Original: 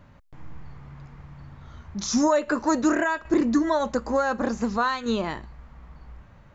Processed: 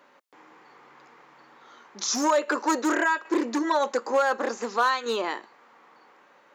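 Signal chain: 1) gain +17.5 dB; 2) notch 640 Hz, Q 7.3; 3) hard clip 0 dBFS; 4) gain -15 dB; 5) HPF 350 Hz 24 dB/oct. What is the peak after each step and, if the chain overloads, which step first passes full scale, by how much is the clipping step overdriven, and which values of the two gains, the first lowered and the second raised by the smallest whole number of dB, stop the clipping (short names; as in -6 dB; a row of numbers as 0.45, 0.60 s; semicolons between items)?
+6.5, +6.0, 0.0, -15.0, -10.5 dBFS; step 1, 6.0 dB; step 1 +11.5 dB, step 4 -9 dB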